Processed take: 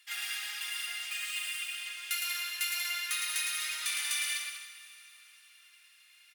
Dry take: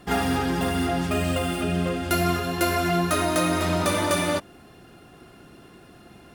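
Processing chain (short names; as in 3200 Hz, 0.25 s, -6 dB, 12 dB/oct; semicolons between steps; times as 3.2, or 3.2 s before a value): Chebyshev high-pass 2200 Hz, order 3; bouncing-ball echo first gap 0.11 s, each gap 0.7×, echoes 5; reverb RT60 3.9 s, pre-delay 7 ms, DRR 11 dB; gain -3.5 dB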